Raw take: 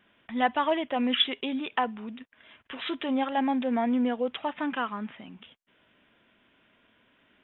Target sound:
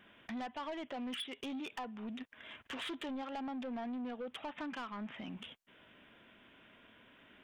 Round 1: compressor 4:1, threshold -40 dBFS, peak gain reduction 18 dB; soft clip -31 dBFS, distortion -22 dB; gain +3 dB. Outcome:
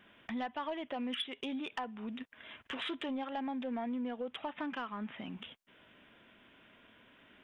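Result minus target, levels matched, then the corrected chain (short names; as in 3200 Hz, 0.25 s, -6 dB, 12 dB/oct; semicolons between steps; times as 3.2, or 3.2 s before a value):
soft clip: distortion -10 dB
compressor 4:1, threshold -40 dBFS, peak gain reduction 18 dB; soft clip -40 dBFS, distortion -11 dB; gain +3 dB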